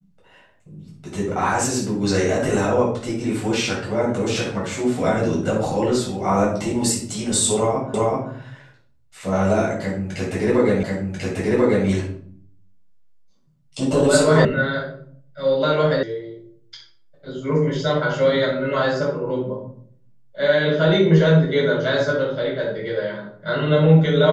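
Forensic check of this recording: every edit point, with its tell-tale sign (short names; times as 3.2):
7.94 repeat of the last 0.38 s
10.83 repeat of the last 1.04 s
14.45 sound cut off
16.03 sound cut off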